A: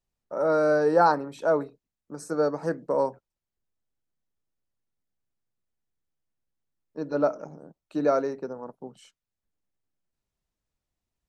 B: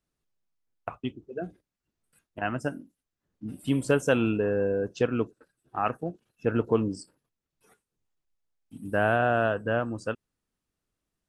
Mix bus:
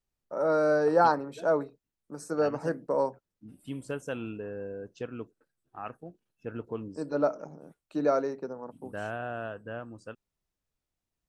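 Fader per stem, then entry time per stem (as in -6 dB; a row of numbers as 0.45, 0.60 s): -2.5, -12.0 dB; 0.00, 0.00 s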